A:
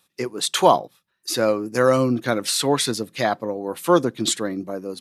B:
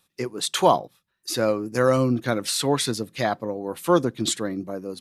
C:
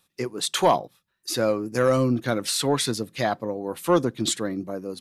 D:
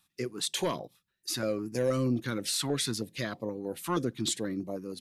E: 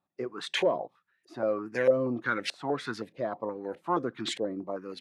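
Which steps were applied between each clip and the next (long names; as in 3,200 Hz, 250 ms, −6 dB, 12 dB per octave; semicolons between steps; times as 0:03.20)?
low-shelf EQ 96 Hz +11.5 dB; level −3 dB
soft clipping −8 dBFS, distortion −21 dB
in parallel at −2.5 dB: brickwall limiter −19.5 dBFS, peak gain reduction 10.5 dB; on the sum: notch on a step sequencer 6.3 Hz 480–1,500 Hz; level −8.5 dB
auto-filter low-pass saw up 1.6 Hz 540–2,300 Hz; RIAA equalisation recording; level +3 dB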